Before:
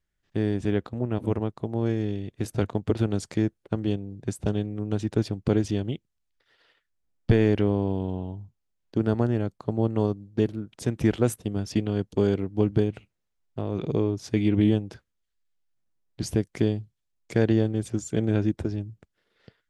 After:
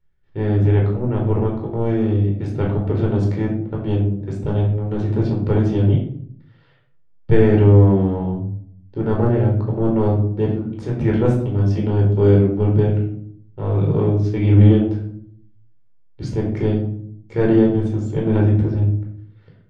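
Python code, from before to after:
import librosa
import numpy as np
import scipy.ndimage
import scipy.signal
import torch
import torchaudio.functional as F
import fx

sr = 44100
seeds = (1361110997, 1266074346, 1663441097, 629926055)

y = fx.transient(x, sr, attack_db=-7, sustain_db=-3)
y = fx.spacing_loss(y, sr, db_at_10k=24)
y = fx.room_shoebox(y, sr, seeds[0], volume_m3=900.0, walls='furnished', distance_m=4.4)
y = y * librosa.db_to_amplitude(4.0)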